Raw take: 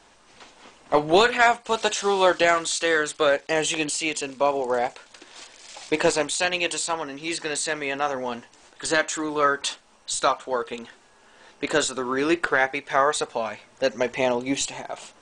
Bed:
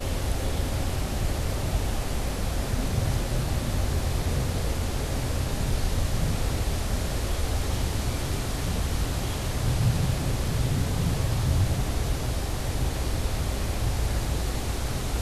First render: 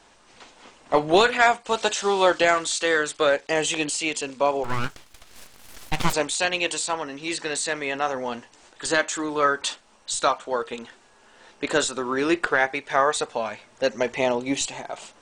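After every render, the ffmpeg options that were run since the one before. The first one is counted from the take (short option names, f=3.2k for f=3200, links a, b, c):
-filter_complex "[0:a]asplit=3[a][b][c];[a]afade=t=out:st=4.63:d=0.02[d];[b]aeval=exprs='abs(val(0))':c=same,afade=t=in:st=4.63:d=0.02,afade=t=out:st=6.12:d=0.02[e];[c]afade=t=in:st=6.12:d=0.02[f];[d][e][f]amix=inputs=3:normalize=0"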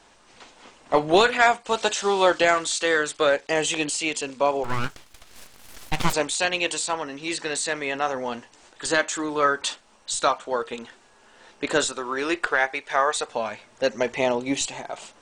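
-filter_complex "[0:a]asettb=1/sr,asplit=3[a][b][c];[a]atrim=end=11.924[d];[b]atrim=start=11.92:end=13.29,asetpts=PTS-STARTPTS,afade=t=in:d=0.004:c=qsin,afade=t=out:st=1.366:d=0.004:c=qsin,equalizer=f=160:w=0.62:g=-10[e];[c]atrim=start=13.286[f];[d][e]acrossfade=d=0.004:c1=hsin:c2=qsin[g];[g][f]acrossfade=d=0.004:c1=qsin:c2=hsin"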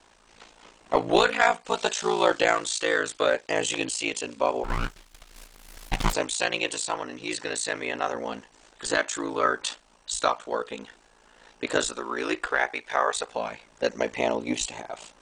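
-af "aeval=exprs='val(0)*sin(2*PI*28*n/s)':c=same"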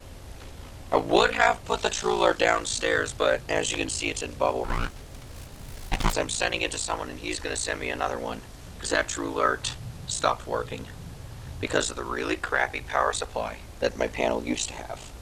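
-filter_complex "[1:a]volume=-15.5dB[a];[0:a][a]amix=inputs=2:normalize=0"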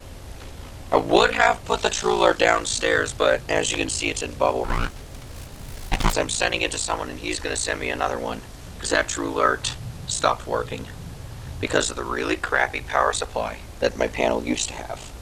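-af "volume=4dB,alimiter=limit=-3dB:level=0:latency=1"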